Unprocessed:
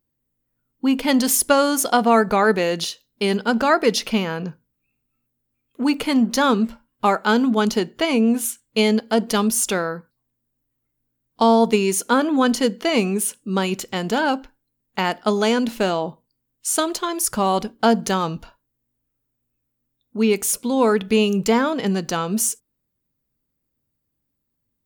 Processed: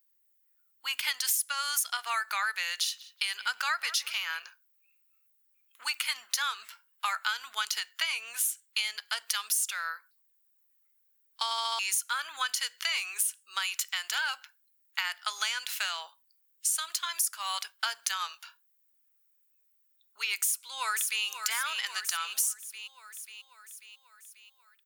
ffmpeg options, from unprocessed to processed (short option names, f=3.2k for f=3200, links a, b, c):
-filter_complex "[0:a]asettb=1/sr,asplit=3[a][b][c];[a]atrim=end=2.794[d];[b]atrim=start=2.79:end=4.4,asetpts=PTS-STARTPTS,afade=t=in:d=0.004:c=qsin,afade=t=out:st=1.606:d=0.004:c=qsin,asplit=2[e][f];[f]adelay=182,lowpass=f=1.2k:p=1,volume=-14.5dB,asplit=2[g][h];[h]adelay=182,lowpass=f=1.2k:p=1,volume=0.52,asplit=2[i][j];[j]adelay=182,lowpass=f=1.2k:p=1,volume=0.52,asplit=2[k][l];[l]adelay=182,lowpass=f=1.2k:p=1,volume=0.52,asplit=2[m][n];[n]adelay=182,lowpass=f=1.2k:p=1,volume=0.52[o];[e][g][i][k][m][o]amix=inputs=6:normalize=0,atrim=end_sample=71001[p];[c]atrim=start=4.396[q];[d][p]acrossfade=d=0.004:c1=hsin:c2=qsin[r];[r][q]acrossfade=d=0.004:c1=qsin:c2=hsin,asplit=2[s][t];[t]afade=t=in:st=20.39:d=0.01,afade=t=out:st=21.25:d=0.01,aecho=0:1:540|1080|1620|2160|2700|3240|3780:0.334965|0.200979|0.120588|0.0723525|0.0434115|0.0260469|0.0156281[u];[s][u]amix=inputs=2:normalize=0,asplit=6[v][w][x][y][z][aa];[v]atrim=end=11.512[ab];[w]atrim=start=11.438:end=11.512[ac];[x]atrim=start=11.438:end=11.512[ad];[y]atrim=start=11.438:end=11.512[ae];[z]atrim=start=11.438:end=11.512[af];[aa]atrim=start=11.788[ag];[ab][ac]acrossfade=d=0.004:c1=hsin:c2=hsin[ah];[ah][ad]acrossfade=d=0.004:c1=hsin:c2=hsin[ai];[ai][ae]acrossfade=d=0.004:c1=hsin:c2=hsin[aj];[aj][af]acrossfade=d=0.004:c1=hsin:c2=hsin[ak];[ak][ag]acrossfade=d=0.004:c1=hsin:c2=hsin,highpass=f=1.4k:w=0.5412,highpass=f=1.4k:w=1.3066,highshelf=f=8.4k:g=7,acompressor=threshold=-29dB:ratio=5,volume=1.5dB"